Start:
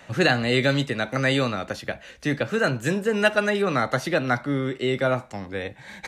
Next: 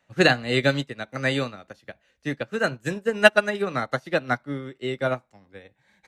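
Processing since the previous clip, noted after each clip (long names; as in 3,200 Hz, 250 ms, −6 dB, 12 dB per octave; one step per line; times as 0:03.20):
expander for the loud parts 2.5 to 1, over −33 dBFS
level +6.5 dB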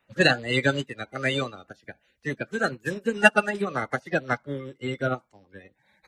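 spectral magnitudes quantised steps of 30 dB
level −1 dB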